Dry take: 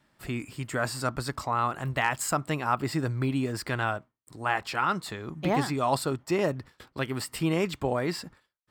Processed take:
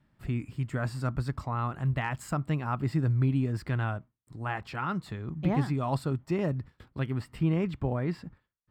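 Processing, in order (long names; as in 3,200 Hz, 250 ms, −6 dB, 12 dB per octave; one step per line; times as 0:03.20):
bass and treble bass +13 dB, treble −8 dB, from 0:07.13 treble −15 dB
level −7 dB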